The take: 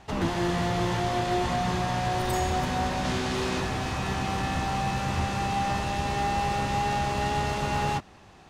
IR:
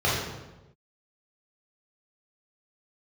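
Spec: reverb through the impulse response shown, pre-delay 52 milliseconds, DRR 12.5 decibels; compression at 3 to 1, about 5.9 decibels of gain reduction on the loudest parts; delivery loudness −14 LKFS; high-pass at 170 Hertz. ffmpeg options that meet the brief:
-filter_complex "[0:a]highpass=170,acompressor=threshold=-32dB:ratio=3,asplit=2[link_01][link_02];[1:a]atrim=start_sample=2205,adelay=52[link_03];[link_02][link_03]afir=irnorm=-1:irlink=0,volume=-28.5dB[link_04];[link_01][link_04]amix=inputs=2:normalize=0,volume=19.5dB"

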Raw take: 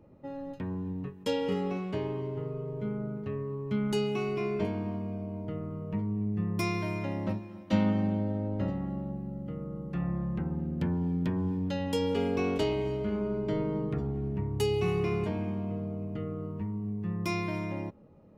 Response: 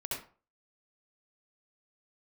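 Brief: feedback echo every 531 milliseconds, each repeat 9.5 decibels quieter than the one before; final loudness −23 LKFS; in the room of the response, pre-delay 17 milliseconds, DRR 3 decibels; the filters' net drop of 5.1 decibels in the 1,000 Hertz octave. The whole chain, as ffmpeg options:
-filter_complex "[0:a]equalizer=frequency=1000:width_type=o:gain=-6.5,aecho=1:1:531|1062|1593|2124:0.335|0.111|0.0365|0.012,asplit=2[link_01][link_02];[1:a]atrim=start_sample=2205,adelay=17[link_03];[link_02][link_03]afir=irnorm=-1:irlink=0,volume=-5.5dB[link_04];[link_01][link_04]amix=inputs=2:normalize=0,volume=8dB"

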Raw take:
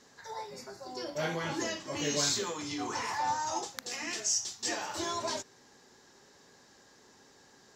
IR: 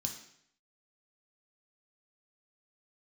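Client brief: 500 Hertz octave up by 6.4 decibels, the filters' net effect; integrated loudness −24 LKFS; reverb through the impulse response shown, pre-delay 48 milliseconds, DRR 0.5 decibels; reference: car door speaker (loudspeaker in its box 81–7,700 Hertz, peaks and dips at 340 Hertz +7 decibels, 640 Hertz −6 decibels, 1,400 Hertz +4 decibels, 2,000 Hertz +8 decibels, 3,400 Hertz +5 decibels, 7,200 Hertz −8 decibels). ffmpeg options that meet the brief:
-filter_complex "[0:a]equalizer=frequency=500:width_type=o:gain=8.5,asplit=2[link_01][link_02];[1:a]atrim=start_sample=2205,adelay=48[link_03];[link_02][link_03]afir=irnorm=-1:irlink=0,volume=1dB[link_04];[link_01][link_04]amix=inputs=2:normalize=0,highpass=81,equalizer=frequency=340:width_type=q:width=4:gain=7,equalizer=frequency=640:width_type=q:width=4:gain=-6,equalizer=frequency=1400:width_type=q:width=4:gain=4,equalizer=frequency=2000:width_type=q:width=4:gain=8,equalizer=frequency=3400:width_type=q:width=4:gain=5,equalizer=frequency=7200:width_type=q:width=4:gain=-8,lowpass=frequency=7700:width=0.5412,lowpass=frequency=7700:width=1.3066,volume=3.5dB"

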